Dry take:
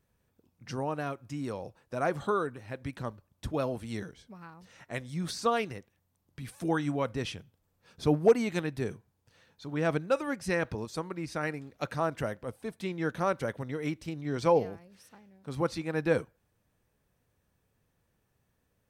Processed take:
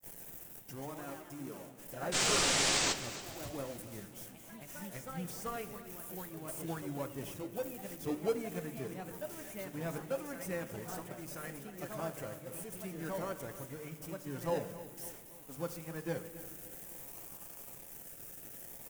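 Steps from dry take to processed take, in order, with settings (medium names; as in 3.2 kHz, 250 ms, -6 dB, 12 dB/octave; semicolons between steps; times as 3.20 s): zero-crossing glitches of -26.5 dBFS; gate -36 dBFS, range -26 dB; peaking EQ 4.1 kHz -13 dB 0.57 oct; hum notches 50/100/150 Hz; reverse; upward compressor, threshold -36 dBFS; reverse; painted sound noise, 2.14–2.93 s, 280–8300 Hz -19 dBFS; flange 0.14 Hz, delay 0.6 ms, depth 9.5 ms, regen -61%; in parallel at -9.5 dB: decimation with a swept rate 32×, swing 60% 0.56 Hz; on the sum: feedback delay 280 ms, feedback 49%, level -15 dB; reverberation RT60 1.5 s, pre-delay 6 ms, DRR 8 dB; ever faster or slower copies 210 ms, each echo +2 st, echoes 3, each echo -6 dB; trim -9 dB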